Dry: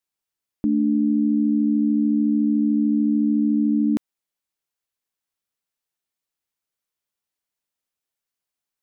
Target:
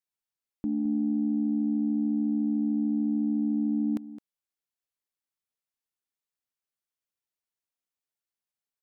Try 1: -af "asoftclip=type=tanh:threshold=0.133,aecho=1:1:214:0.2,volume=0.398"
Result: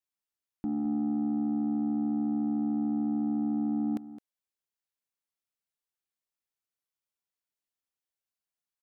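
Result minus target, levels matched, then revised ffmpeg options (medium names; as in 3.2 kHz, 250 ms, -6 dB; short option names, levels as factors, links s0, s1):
saturation: distortion +14 dB
-af "asoftclip=type=tanh:threshold=0.355,aecho=1:1:214:0.2,volume=0.398"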